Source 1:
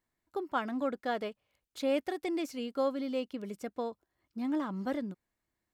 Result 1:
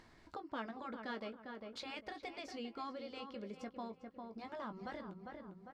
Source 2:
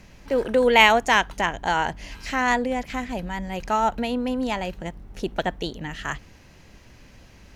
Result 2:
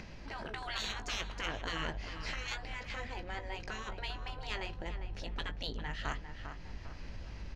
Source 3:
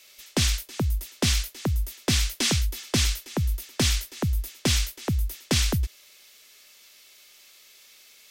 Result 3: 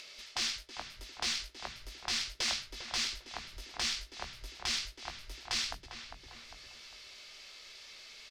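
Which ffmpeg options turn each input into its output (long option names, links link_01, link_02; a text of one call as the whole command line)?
ffmpeg -i in.wav -filter_complex "[0:a]afftfilt=real='re*lt(hypot(re,im),0.158)':imag='im*lt(hypot(re,im),0.158)':win_size=1024:overlap=0.75,bandreject=frequency=60:width_type=h:width=6,bandreject=frequency=120:width_type=h:width=6,bandreject=frequency=180:width_type=h:width=6,adynamicsmooth=sensitivity=1:basefreq=4600,equalizer=frequency=4800:width=2.3:gain=6.5,asplit=2[link_01][link_02];[link_02]adelay=18,volume=-10dB[link_03];[link_01][link_03]amix=inputs=2:normalize=0,asplit=2[link_04][link_05];[link_05]adelay=401,lowpass=frequency=1900:poles=1,volume=-8.5dB,asplit=2[link_06][link_07];[link_07]adelay=401,lowpass=frequency=1900:poles=1,volume=0.3,asplit=2[link_08][link_09];[link_09]adelay=401,lowpass=frequency=1900:poles=1,volume=0.3,asplit=2[link_10][link_11];[link_11]adelay=401,lowpass=frequency=1900:poles=1,volume=0.3[link_12];[link_04][link_06][link_08][link_10][link_12]amix=inputs=5:normalize=0,acompressor=mode=upward:threshold=-34dB:ratio=2.5,asubboost=boost=2:cutoff=130,volume=-6.5dB" out.wav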